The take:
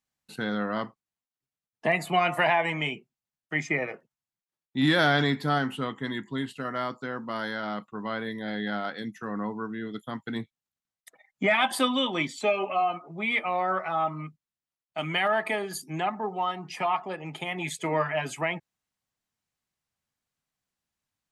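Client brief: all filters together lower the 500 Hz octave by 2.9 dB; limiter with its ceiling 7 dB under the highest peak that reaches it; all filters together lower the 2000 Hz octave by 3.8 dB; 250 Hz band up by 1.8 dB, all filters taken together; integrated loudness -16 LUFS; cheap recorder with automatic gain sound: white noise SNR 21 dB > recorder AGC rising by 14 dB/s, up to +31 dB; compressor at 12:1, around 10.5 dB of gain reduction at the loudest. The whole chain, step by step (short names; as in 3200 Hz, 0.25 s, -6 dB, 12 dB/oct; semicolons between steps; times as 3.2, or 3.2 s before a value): bell 250 Hz +3.5 dB; bell 500 Hz -4.5 dB; bell 2000 Hz -4.5 dB; compressor 12:1, threshold -28 dBFS; limiter -25 dBFS; white noise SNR 21 dB; recorder AGC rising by 14 dB/s, up to +31 dB; gain +20 dB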